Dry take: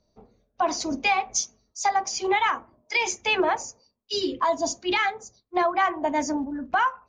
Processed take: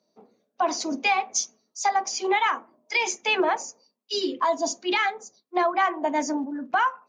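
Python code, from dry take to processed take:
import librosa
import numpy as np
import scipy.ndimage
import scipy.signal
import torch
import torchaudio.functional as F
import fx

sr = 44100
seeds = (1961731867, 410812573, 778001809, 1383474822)

y = scipy.signal.sosfilt(scipy.signal.butter(4, 200.0, 'highpass', fs=sr, output='sos'), x)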